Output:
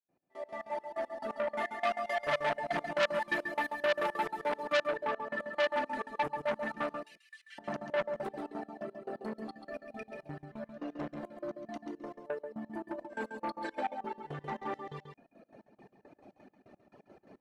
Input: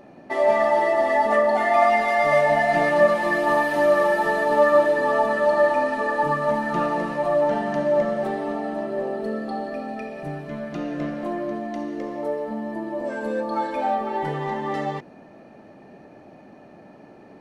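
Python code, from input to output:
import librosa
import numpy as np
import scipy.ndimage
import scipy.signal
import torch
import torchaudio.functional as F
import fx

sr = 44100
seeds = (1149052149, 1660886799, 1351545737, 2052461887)

y = fx.fade_in_head(x, sr, length_s=1.97)
y = fx.steep_highpass(y, sr, hz=1900.0, slope=36, at=(7.03, 7.58), fade=0.02)
y = fx.dereverb_blind(y, sr, rt60_s=1.2)
y = fx.high_shelf(y, sr, hz=4900.0, db=-12.0, at=(4.78, 5.4))
y = fx.over_compress(y, sr, threshold_db=-33.0, ratio=-0.5, at=(12.87, 13.75), fade=0.02)
y = fx.step_gate(y, sr, bpm=172, pattern='.x..x.x.x.', floor_db=-24.0, edge_ms=4.5)
y = y + 10.0 ** (-7.5 / 20.0) * np.pad(y, (int(137 * sr / 1000.0), 0))[:len(y)]
y = fx.transformer_sat(y, sr, knee_hz=2600.0)
y = y * 10.0 ** (-6.0 / 20.0)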